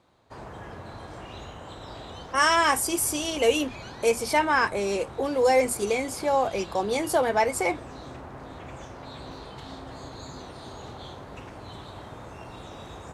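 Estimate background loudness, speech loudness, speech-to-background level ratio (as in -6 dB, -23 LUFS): -41.5 LUFS, -24.5 LUFS, 17.0 dB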